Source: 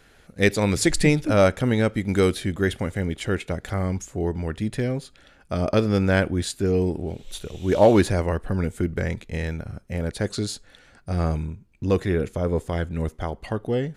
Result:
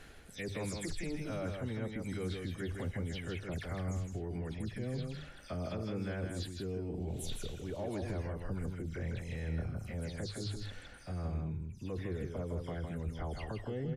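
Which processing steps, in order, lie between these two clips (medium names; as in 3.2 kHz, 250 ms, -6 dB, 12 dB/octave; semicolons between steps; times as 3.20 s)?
delay that grows with frequency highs early, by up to 125 ms; bass shelf 170 Hz +5 dB; hum notches 50/100/150 Hz; reverse; compression 10:1, threshold -33 dBFS, peak gain reduction 23 dB; reverse; peak limiter -31 dBFS, peak gain reduction 7.5 dB; on a send: delay 160 ms -5 dB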